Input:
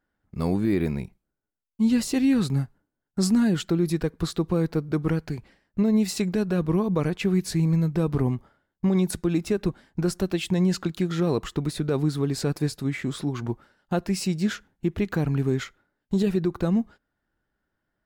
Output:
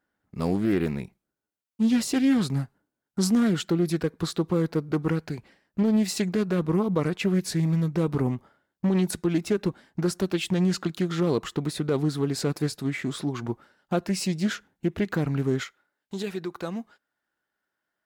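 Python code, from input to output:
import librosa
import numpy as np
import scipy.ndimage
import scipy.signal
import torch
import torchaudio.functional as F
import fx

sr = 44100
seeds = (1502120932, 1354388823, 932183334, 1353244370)

y = fx.highpass(x, sr, hz=fx.steps((0.0, 170.0), (15.63, 840.0)), slope=6)
y = fx.doppler_dist(y, sr, depth_ms=0.22)
y = y * 10.0 ** (1.0 / 20.0)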